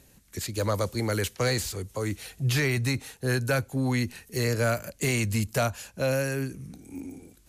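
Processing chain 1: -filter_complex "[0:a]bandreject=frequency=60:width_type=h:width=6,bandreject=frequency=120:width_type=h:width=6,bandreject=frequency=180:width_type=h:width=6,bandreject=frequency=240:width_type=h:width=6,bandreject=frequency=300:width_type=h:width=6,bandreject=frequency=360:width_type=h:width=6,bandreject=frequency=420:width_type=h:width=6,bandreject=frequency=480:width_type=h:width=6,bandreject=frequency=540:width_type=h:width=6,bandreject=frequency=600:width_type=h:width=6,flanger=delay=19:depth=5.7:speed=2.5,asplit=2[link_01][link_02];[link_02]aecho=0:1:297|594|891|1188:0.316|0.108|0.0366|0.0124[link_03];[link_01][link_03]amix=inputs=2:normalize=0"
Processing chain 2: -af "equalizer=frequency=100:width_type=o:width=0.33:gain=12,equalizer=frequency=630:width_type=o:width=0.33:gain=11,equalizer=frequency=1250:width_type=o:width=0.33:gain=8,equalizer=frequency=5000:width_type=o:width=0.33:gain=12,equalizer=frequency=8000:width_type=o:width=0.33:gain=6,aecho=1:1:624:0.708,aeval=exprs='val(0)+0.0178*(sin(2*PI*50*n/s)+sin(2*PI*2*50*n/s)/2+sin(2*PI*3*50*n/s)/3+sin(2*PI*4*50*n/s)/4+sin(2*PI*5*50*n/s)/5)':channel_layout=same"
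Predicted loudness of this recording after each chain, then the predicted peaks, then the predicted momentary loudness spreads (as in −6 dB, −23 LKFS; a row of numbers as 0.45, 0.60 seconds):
−31.5, −22.5 LKFS; −16.5, −7.5 dBFS; 10, 7 LU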